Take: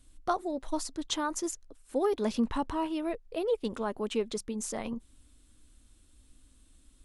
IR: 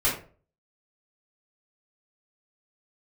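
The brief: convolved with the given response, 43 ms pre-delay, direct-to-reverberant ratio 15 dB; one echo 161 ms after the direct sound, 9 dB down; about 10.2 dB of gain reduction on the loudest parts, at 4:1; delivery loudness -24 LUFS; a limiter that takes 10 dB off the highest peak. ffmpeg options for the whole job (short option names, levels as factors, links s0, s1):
-filter_complex "[0:a]acompressor=threshold=0.0158:ratio=4,alimiter=level_in=3.35:limit=0.0631:level=0:latency=1,volume=0.299,aecho=1:1:161:0.355,asplit=2[s0][s1];[1:a]atrim=start_sample=2205,adelay=43[s2];[s1][s2]afir=irnorm=-1:irlink=0,volume=0.0447[s3];[s0][s3]amix=inputs=2:normalize=0,volume=9.44"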